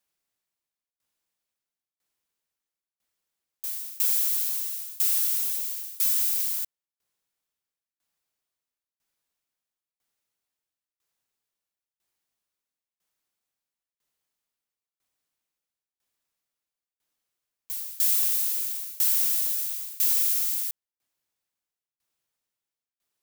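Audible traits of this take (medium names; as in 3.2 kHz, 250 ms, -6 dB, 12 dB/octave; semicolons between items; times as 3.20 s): tremolo saw down 1 Hz, depth 95%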